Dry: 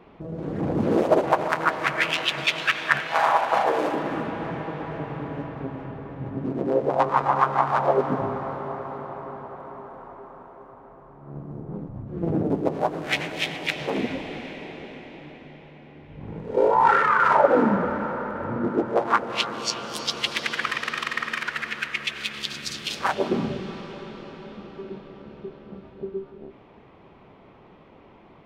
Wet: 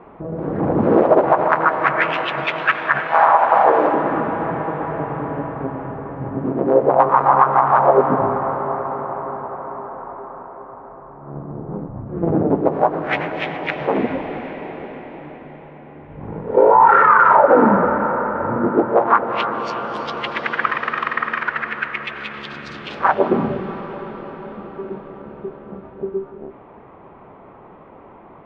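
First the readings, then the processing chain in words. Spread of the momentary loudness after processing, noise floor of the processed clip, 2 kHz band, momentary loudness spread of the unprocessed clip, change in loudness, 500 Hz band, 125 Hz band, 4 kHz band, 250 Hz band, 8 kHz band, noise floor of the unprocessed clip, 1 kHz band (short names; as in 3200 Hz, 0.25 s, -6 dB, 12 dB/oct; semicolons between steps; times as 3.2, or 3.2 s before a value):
20 LU, -43 dBFS, +5.0 dB, 19 LU, +7.0 dB, +7.5 dB, +4.5 dB, -5.5 dB, +6.0 dB, under -15 dB, -51 dBFS, +8.5 dB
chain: Chebyshev low-pass 1200 Hz, order 2; low shelf 440 Hz -7 dB; maximiser +13 dB; gain -1 dB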